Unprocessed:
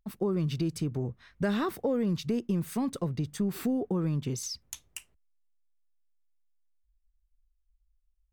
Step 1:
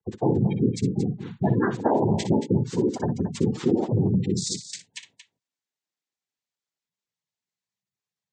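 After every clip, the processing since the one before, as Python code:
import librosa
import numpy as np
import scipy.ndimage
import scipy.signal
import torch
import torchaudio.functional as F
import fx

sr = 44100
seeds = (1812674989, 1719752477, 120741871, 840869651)

y = fx.noise_vocoder(x, sr, seeds[0], bands=6)
y = fx.spec_gate(y, sr, threshold_db=-15, keep='strong')
y = fx.echo_multitap(y, sr, ms=(60, 227), db=(-11.0, -11.0))
y = y * librosa.db_to_amplitude(7.0)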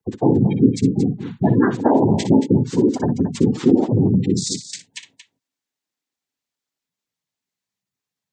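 y = fx.peak_eq(x, sr, hz=270.0, db=8.0, octaves=0.36)
y = y * librosa.db_to_amplitude(4.5)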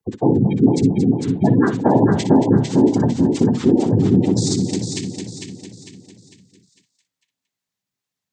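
y = fx.echo_feedback(x, sr, ms=451, feedback_pct=42, wet_db=-5)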